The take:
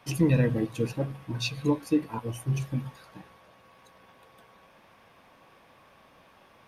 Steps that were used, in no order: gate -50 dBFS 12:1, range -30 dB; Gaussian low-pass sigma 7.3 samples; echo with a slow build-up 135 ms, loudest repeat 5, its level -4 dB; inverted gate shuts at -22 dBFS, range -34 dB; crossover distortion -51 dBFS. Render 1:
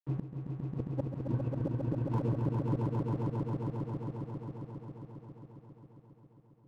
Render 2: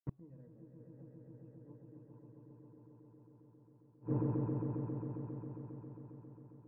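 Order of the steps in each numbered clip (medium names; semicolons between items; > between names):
Gaussian low-pass > gate > crossover distortion > inverted gate > echo with a slow build-up; crossover distortion > gate > echo with a slow build-up > inverted gate > Gaussian low-pass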